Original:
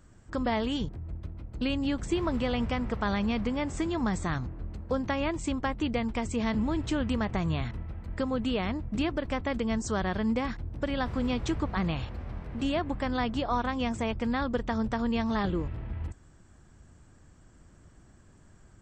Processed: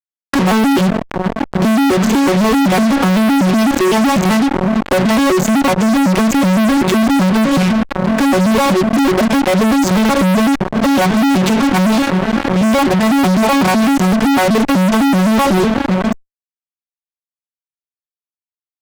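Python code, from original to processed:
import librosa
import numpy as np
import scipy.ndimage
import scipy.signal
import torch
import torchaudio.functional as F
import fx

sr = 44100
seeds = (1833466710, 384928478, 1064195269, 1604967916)

y = fx.vocoder_arp(x, sr, chord='minor triad', root=54, every_ms=126)
y = fx.fuzz(y, sr, gain_db=53.0, gate_db=-50.0)
y = fx.env_flatten(y, sr, amount_pct=50)
y = y * 10.0 ** (2.5 / 20.0)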